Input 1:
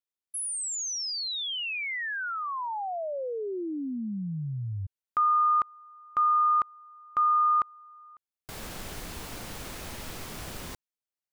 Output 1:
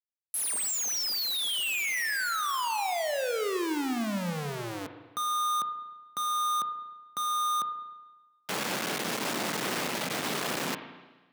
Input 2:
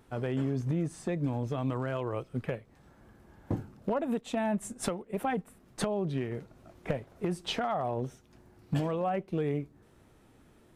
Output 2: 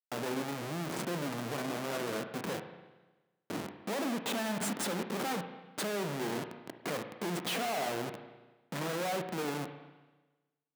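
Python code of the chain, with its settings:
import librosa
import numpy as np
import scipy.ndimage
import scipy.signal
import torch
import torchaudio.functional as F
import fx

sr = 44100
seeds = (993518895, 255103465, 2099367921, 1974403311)

y = fx.schmitt(x, sr, flips_db=-44.5)
y = scipy.signal.sosfilt(scipy.signal.butter(4, 170.0, 'highpass', fs=sr, output='sos'), y)
y = fx.rev_spring(y, sr, rt60_s=1.2, pass_ms=(34, 50), chirp_ms=65, drr_db=7.5)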